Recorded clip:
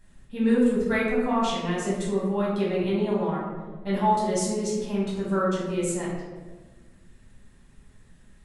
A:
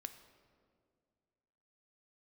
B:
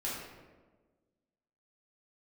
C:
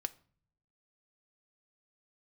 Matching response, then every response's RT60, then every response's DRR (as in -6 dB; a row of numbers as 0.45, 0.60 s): B; 2.1, 1.4, 0.45 s; 8.5, -7.5, 9.0 dB